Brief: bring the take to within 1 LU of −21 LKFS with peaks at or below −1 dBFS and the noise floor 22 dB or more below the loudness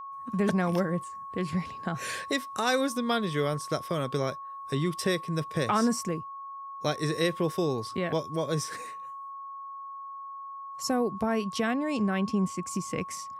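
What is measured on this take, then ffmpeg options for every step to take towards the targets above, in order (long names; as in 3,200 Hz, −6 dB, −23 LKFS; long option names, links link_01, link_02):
interfering tone 1,100 Hz; level of the tone −38 dBFS; integrated loudness −30.0 LKFS; sample peak −13.0 dBFS; target loudness −21.0 LKFS
→ -af "bandreject=frequency=1100:width=30"
-af "volume=9dB"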